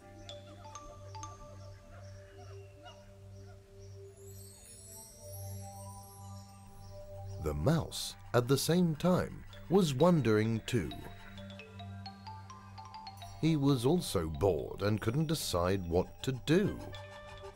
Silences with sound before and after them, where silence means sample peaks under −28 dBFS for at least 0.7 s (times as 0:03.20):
0:10.80–0:13.43